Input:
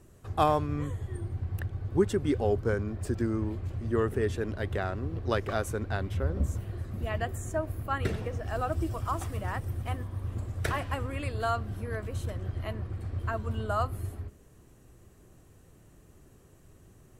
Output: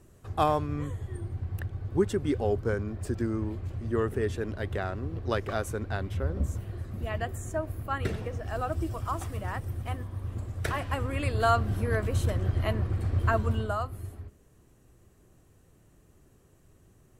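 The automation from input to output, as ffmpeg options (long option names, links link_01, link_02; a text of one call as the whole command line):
ffmpeg -i in.wav -af "volume=7dB,afade=type=in:start_time=10.72:duration=0.98:silence=0.421697,afade=type=out:start_time=13.4:duration=0.4:silence=0.298538" out.wav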